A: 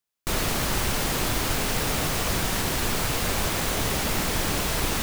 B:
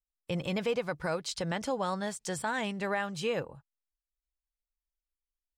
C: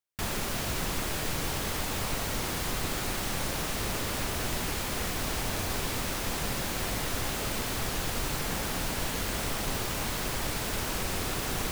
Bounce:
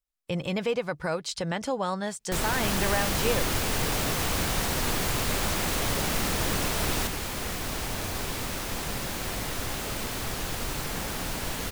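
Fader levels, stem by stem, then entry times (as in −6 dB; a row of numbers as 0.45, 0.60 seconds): −3.5, +3.0, −0.5 decibels; 2.05, 0.00, 2.45 seconds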